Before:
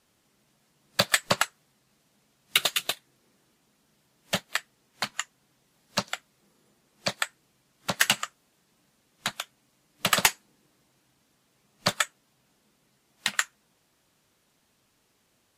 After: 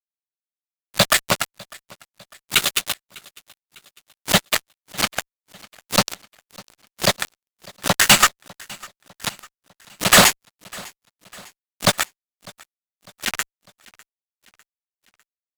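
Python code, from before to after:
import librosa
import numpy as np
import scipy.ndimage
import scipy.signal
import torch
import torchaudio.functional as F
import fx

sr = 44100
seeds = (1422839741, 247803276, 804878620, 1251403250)

p1 = fx.rider(x, sr, range_db=4, speed_s=0.5)
p2 = fx.auto_swell(p1, sr, attack_ms=437.0)
p3 = fx.fuzz(p2, sr, gain_db=53.0, gate_db=-57.0)
p4 = p3 + fx.echo_feedback(p3, sr, ms=601, feedback_pct=50, wet_db=-24.0, dry=0)
y = F.gain(torch.from_numpy(p4), 6.0).numpy()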